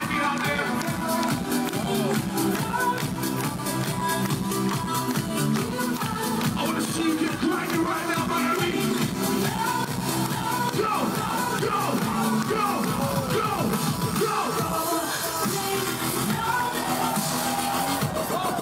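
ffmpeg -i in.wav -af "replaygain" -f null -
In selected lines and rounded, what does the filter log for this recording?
track_gain = +8.4 dB
track_peak = 0.147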